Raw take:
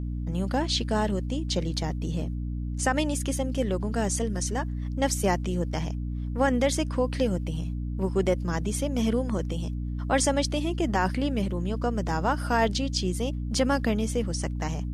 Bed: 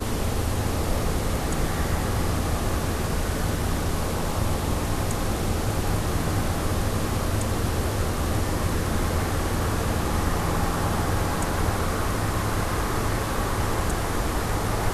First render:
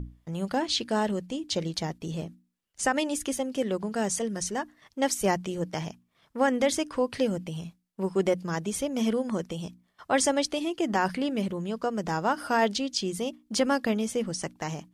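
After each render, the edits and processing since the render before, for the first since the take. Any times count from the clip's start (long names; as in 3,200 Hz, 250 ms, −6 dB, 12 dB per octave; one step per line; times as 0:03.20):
mains-hum notches 60/120/180/240/300 Hz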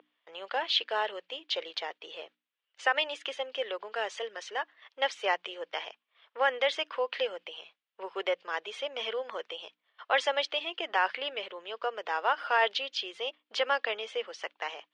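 elliptic band-pass filter 450–3,200 Hz, stop band 70 dB
spectral tilt +4 dB per octave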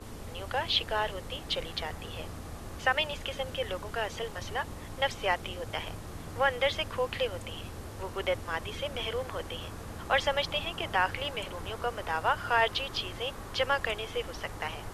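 mix in bed −17 dB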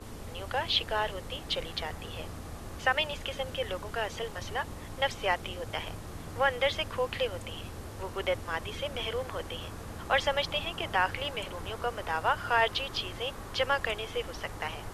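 no processing that can be heard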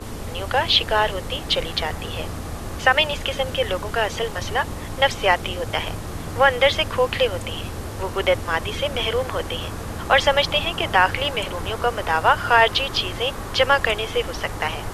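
level +11 dB
brickwall limiter −3 dBFS, peak gain reduction 1.5 dB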